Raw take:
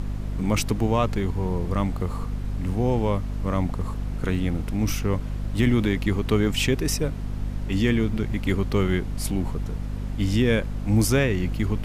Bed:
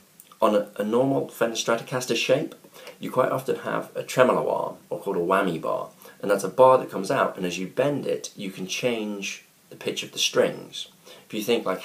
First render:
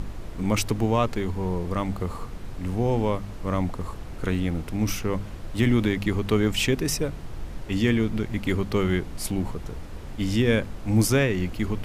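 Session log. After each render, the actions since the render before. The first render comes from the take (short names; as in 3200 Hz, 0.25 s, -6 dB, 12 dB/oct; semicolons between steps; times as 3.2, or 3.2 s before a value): de-hum 50 Hz, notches 5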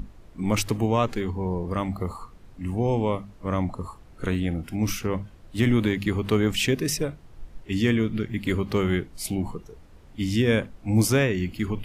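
noise print and reduce 13 dB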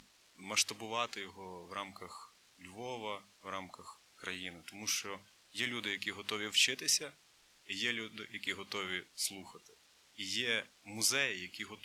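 bit-crush 10-bit; band-pass 4700 Hz, Q 0.78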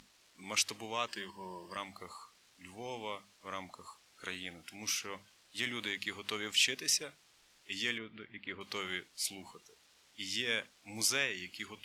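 1.08–1.77 ripple EQ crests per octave 1.3, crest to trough 11 dB; 7.98–8.61 air absorption 440 m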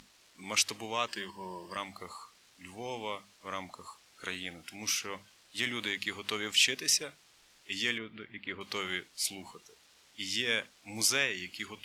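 gain +3.5 dB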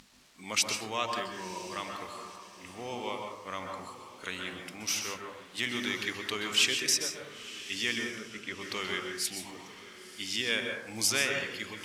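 diffused feedback echo 0.999 s, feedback 42%, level -15 dB; plate-style reverb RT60 0.76 s, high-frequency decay 0.3×, pre-delay 0.115 s, DRR 2.5 dB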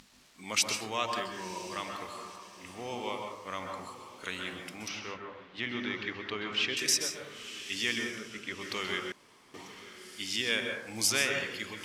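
4.88–6.77 air absorption 250 m; 9.12–9.54 room tone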